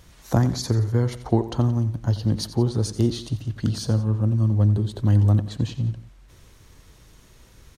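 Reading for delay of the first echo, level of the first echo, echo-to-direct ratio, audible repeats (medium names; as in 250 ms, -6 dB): 88 ms, -14.0 dB, -13.0 dB, 2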